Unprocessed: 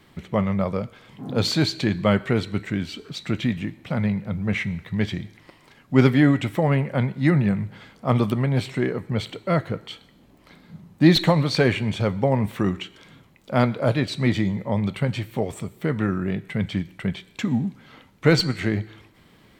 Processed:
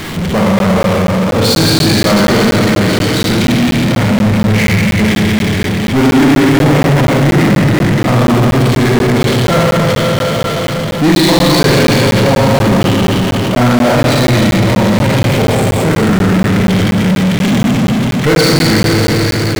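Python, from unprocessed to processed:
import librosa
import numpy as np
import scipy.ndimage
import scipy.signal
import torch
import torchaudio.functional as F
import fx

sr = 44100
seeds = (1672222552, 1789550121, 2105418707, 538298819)

y = fx.rev_schroeder(x, sr, rt60_s=3.4, comb_ms=33, drr_db=-7.0)
y = fx.power_curve(y, sr, exponent=0.35)
y = fx.buffer_crackle(y, sr, first_s=0.59, period_s=0.24, block=512, kind='zero')
y = y * librosa.db_to_amplitude(-4.0)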